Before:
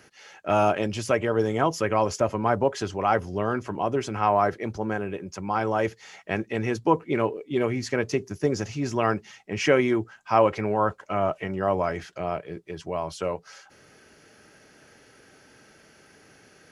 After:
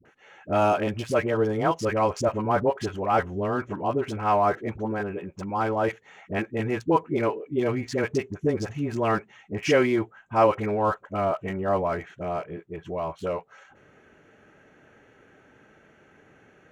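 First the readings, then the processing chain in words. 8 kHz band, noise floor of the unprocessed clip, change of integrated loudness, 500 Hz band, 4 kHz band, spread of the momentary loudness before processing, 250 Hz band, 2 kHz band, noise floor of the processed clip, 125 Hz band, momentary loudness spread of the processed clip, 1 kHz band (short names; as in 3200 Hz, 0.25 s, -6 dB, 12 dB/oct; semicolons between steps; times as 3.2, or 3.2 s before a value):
-5.0 dB, -56 dBFS, 0.0 dB, 0.0 dB, -2.5 dB, 10 LU, 0.0 dB, -1.0 dB, -58 dBFS, 0.0 dB, 10 LU, 0.0 dB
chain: Wiener smoothing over 9 samples; dispersion highs, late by 55 ms, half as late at 520 Hz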